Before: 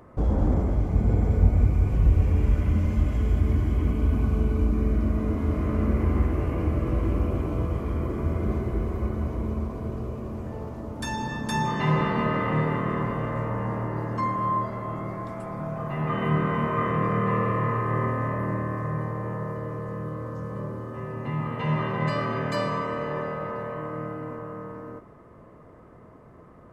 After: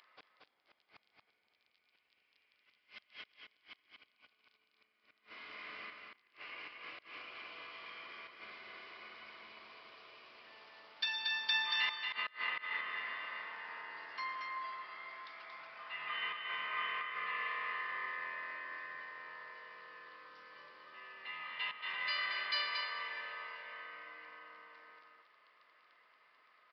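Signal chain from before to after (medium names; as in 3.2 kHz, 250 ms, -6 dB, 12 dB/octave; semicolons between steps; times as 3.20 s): octave divider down 2 oct, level +1 dB; inverted gate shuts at -12 dBFS, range -28 dB; crackle 12 per s -50 dBFS; Butterworth band-pass 4.1 kHz, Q 0.89; on a send: delay 230 ms -4.5 dB; on the sum: resampled via 11.025 kHz; trim +4.5 dB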